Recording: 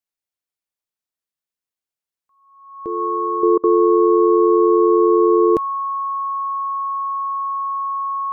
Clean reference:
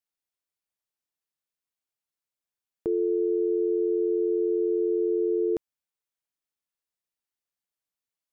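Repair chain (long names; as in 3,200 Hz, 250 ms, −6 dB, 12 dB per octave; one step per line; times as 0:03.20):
notch filter 1,100 Hz, Q 30
repair the gap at 0:03.58, 55 ms
level 0 dB, from 0:03.43 −11 dB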